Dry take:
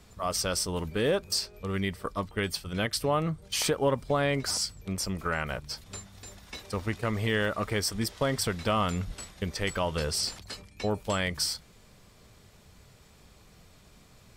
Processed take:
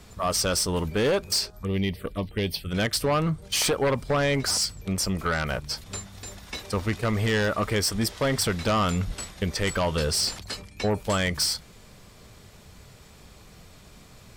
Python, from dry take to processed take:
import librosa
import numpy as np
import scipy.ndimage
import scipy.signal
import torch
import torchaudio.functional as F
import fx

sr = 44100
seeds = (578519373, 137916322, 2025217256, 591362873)

y = fx.fold_sine(x, sr, drive_db=7, ceiling_db=-14.0)
y = fx.env_phaser(y, sr, low_hz=370.0, high_hz=1400.0, full_db=-19.0, at=(1.5, 2.71))
y = y * librosa.db_to_amplitude(-4.5)